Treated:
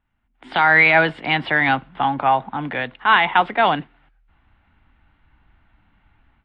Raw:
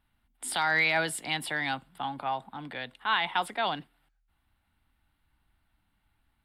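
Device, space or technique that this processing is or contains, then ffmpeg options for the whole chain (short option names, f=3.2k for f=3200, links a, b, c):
action camera in a waterproof case: -af "lowpass=f=2.8k:w=0.5412,lowpass=f=2.8k:w=1.3066,dynaudnorm=f=290:g=3:m=15dB" -ar 24000 -c:a aac -b:a 48k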